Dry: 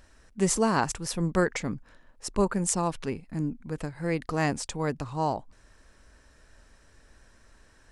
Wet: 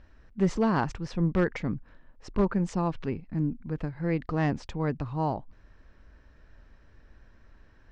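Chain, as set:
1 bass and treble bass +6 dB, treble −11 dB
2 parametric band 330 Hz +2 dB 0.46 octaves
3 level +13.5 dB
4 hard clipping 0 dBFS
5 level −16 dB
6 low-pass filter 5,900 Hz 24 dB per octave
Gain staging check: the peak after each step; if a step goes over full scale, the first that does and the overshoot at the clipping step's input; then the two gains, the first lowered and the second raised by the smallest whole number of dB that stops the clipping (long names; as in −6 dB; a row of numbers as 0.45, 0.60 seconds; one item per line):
−8.5, −8.0, +5.5, 0.0, −16.0, −16.0 dBFS
step 3, 5.5 dB
step 3 +7.5 dB, step 5 −10 dB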